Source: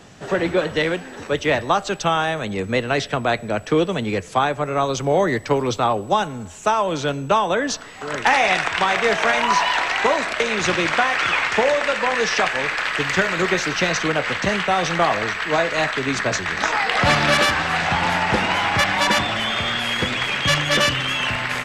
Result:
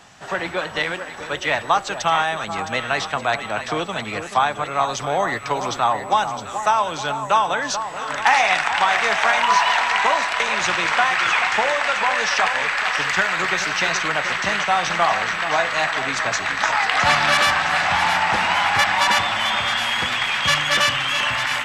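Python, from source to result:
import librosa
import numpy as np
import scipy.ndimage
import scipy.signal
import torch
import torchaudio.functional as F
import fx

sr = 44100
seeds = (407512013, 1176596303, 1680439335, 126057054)

y = fx.low_shelf_res(x, sr, hz=610.0, db=-8.0, q=1.5)
y = fx.echo_split(y, sr, split_hz=1300.0, low_ms=432, high_ms=663, feedback_pct=52, wet_db=-9.0)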